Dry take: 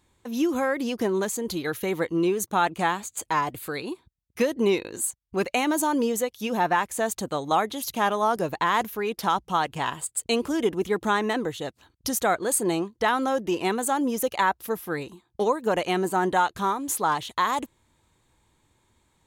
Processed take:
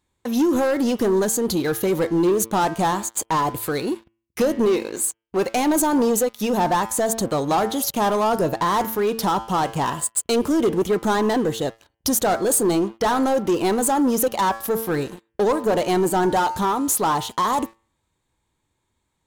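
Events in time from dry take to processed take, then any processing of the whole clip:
4.65–5.46 tone controls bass -9 dB, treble -4 dB
whole clip: de-hum 112.5 Hz, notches 29; sample leveller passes 3; dynamic EQ 2300 Hz, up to -8 dB, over -35 dBFS, Q 0.9; gain -1.5 dB

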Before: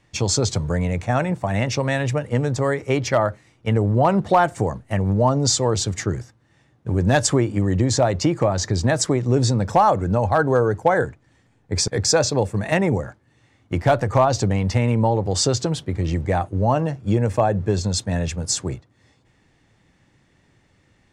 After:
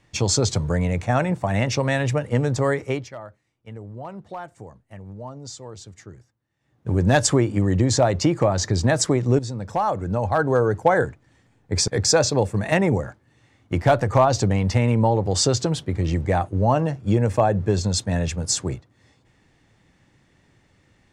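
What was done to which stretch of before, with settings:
2.79–6.9 dip -18.5 dB, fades 0.30 s
9.39–10.82 fade in, from -13 dB

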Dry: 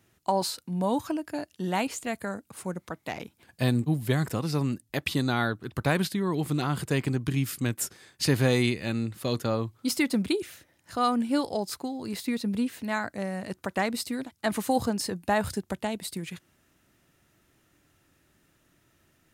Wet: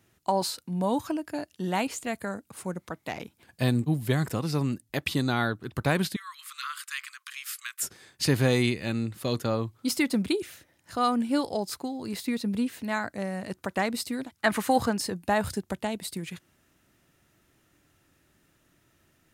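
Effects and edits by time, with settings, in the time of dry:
6.16–7.83 steep high-pass 1100 Hz 96 dB/oct
14.35–14.98 bell 1600 Hz +8 dB 1.8 oct

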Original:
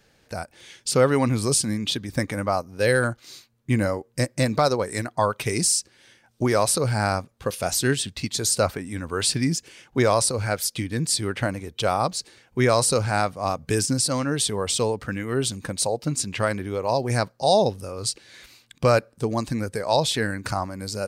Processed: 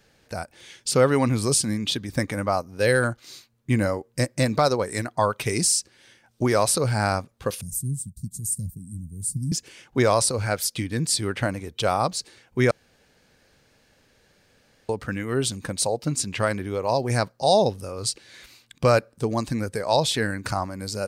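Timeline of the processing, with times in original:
7.61–9.52 elliptic band-stop 180–9000 Hz, stop band 70 dB
12.71–14.89 room tone

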